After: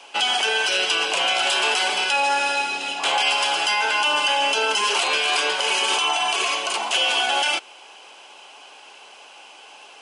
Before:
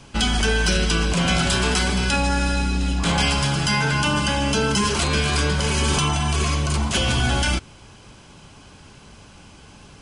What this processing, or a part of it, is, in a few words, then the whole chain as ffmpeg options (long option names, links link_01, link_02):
laptop speaker: -af "highpass=frequency=420:width=0.5412,highpass=frequency=420:width=1.3066,equalizer=frequency=790:width_type=o:width=0.57:gain=8,equalizer=frequency=2800:width_type=o:width=0.53:gain=10,alimiter=limit=-11dB:level=0:latency=1:release=69"